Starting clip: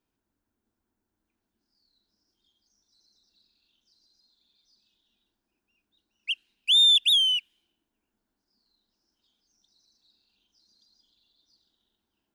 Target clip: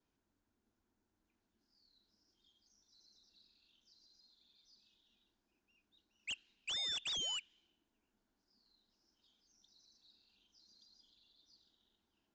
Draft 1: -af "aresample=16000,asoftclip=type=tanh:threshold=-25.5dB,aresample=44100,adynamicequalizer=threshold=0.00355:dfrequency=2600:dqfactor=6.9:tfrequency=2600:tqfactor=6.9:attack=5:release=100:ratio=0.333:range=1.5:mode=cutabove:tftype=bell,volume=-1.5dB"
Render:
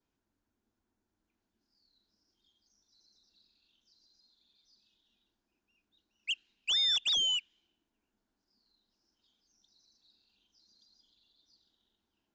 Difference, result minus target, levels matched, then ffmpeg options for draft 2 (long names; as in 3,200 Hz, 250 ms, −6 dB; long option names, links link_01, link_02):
soft clipping: distortion −4 dB
-af "aresample=16000,asoftclip=type=tanh:threshold=-37dB,aresample=44100,adynamicequalizer=threshold=0.00355:dfrequency=2600:dqfactor=6.9:tfrequency=2600:tqfactor=6.9:attack=5:release=100:ratio=0.333:range=1.5:mode=cutabove:tftype=bell,volume=-1.5dB"